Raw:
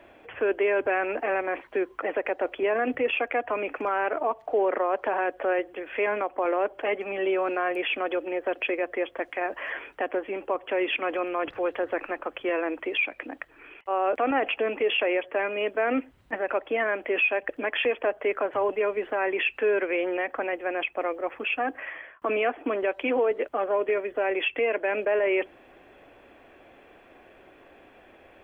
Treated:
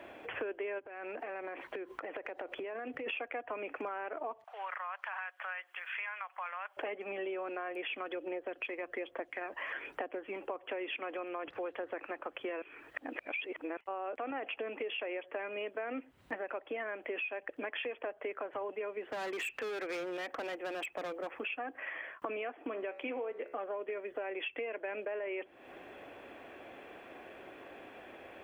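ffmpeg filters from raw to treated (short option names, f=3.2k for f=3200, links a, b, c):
-filter_complex "[0:a]asplit=3[a][b][c];[a]afade=t=out:st=0.78:d=0.02[d];[b]acompressor=threshold=-37dB:ratio=12:attack=3.2:release=140:knee=1:detection=peak,afade=t=in:st=0.78:d=0.02,afade=t=out:st=3.06:d=0.02[e];[c]afade=t=in:st=3.06:d=0.02[f];[d][e][f]amix=inputs=3:normalize=0,asettb=1/sr,asplit=3[g][h][i];[g]atrim=end=4.444[j];[h]atrim=start=4.44:end=6.77,asetpts=PTS-STARTPTS,afade=t=in:d=0.004:c=qsin,afade=t=out:st=2.326:d=0.004:c=qsin,highpass=f=1.1k:w=0.5412,highpass=f=1.1k:w=1.3066[k];[i]atrim=start=6.766[l];[j][k]acrossfade=d=0.004:c1=hsin:c2=qsin[m];[m][l]acrossfade=d=0.004:c1=qsin:c2=hsin,asplit=3[n][o][p];[n]afade=t=out:st=7.94:d=0.02[q];[o]aphaser=in_gain=1:out_gain=1:delay=1.1:decay=0.38:speed=1.2:type=triangular,afade=t=in:st=7.94:d=0.02,afade=t=out:st=10.39:d=0.02[r];[p]afade=t=in:st=10.39:d=0.02[s];[q][r][s]amix=inputs=3:normalize=0,asplit=3[t][u][v];[t]afade=t=out:st=19.01:d=0.02[w];[u]volume=27.5dB,asoftclip=hard,volume=-27.5dB,afade=t=in:st=19.01:d=0.02,afade=t=out:st=21.26:d=0.02[x];[v]afade=t=in:st=21.26:d=0.02[y];[w][x][y]amix=inputs=3:normalize=0,asettb=1/sr,asplit=3[z][aa][ab];[z]atrim=end=22.574[ac];[aa]atrim=start=22.57:end=23.59,asetpts=PTS-STARTPTS,afade=t=in:d=0.004:c=qsin,afade=t=out:st=1.016:d=0.004:c=qsin,bandreject=f=70.79:t=h:w=4,bandreject=f=141.58:t=h:w=4,bandreject=f=212.37:t=h:w=4,bandreject=f=283.16:t=h:w=4,bandreject=f=353.95:t=h:w=4,bandreject=f=424.74:t=h:w=4,bandreject=f=495.53:t=h:w=4,bandreject=f=566.32:t=h:w=4,bandreject=f=637.11:t=h:w=4,bandreject=f=707.9:t=h:w=4,bandreject=f=778.69:t=h:w=4,bandreject=f=849.48:t=h:w=4,bandreject=f=920.27:t=h:w=4,bandreject=f=991.06:t=h:w=4,bandreject=f=1.06185k:t=h:w=4,bandreject=f=1.13264k:t=h:w=4,bandreject=f=1.20343k:t=h:w=4,bandreject=f=1.27422k:t=h:w=4,bandreject=f=1.34501k:t=h:w=4,bandreject=f=1.4158k:t=h:w=4,bandreject=f=1.48659k:t=h:w=4,bandreject=f=1.55738k:t=h:w=4,bandreject=f=1.62817k:t=h:w=4,bandreject=f=1.69896k:t=h:w=4,bandreject=f=1.76975k:t=h:w=4,bandreject=f=1.84054k:t=h:w=4,bandreject=f=1.91133k:t=h:w=4,bandreject=f=1.98212k:t=h:w=4,bandreject=f=2.05291k:t=h:w=4,bandreject=f=2.1237k:t=h:w=4,bandreject=f=2.19449k:t=h:w=4,bandreject=f=2.26528k:t=h:w=4,bandreject=f=2.33607k:t=h:w=4,bandreject=f=2.40686k:t=h:w=4,bandreject=f=2.47765k:t=h:w=4,bandreject=f=2.54844k:t=h:w=4,bandreject=f=2.61923k:t=h:w=4,bandreject=f=2.69002k:t=h:w=4,bandreject=f=2.76081k:t=h:w=4[ad];[ab]atrim=start=23.586[ae];[ac][ad]acrossfade=d=0.004:c1=hsin:c2=qsin[af];[af][ae]acrossfade=d=0.004:c1=qsin:c2=hsin,asplit=3[ag][ah][ai];[ag]atrim=end=12.622[aj];[ah]atrim=start=12.618:end=13.772,asetpts=PTS-STARTPTS,areverse[ak];[ai]atrim=start=13.768[al];[aj][ak]acrossfade=d=0.004:c1=hsin:c2=hsin[am];[am][al]acrossfade=d=0.004:c1=hsin:c2=hsin,highpass=f=140:p=1,acompressor=threshold=-40dB:ratio=6,volume=2.5dB"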